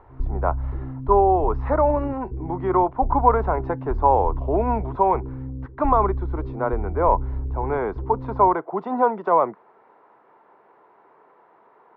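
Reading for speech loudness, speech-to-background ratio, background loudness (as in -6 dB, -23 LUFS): -22.5 LUFS, 8.5 dB, -31.0 LUFS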